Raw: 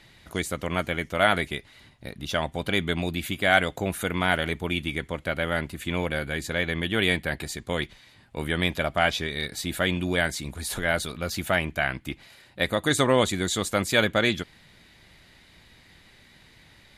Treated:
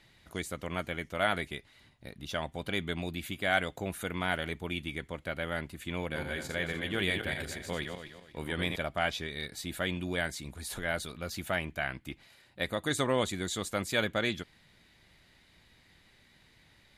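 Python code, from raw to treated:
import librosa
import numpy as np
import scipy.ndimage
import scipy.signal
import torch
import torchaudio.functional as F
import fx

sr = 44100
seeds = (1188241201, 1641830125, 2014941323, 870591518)

y = fx.reverse_delay_fb(x, sr, ms=123, feedback_pct=53, wet_db=-5, at=(5.99, 8.76))
y = y * librosa.db_to_amplitude(-8.0)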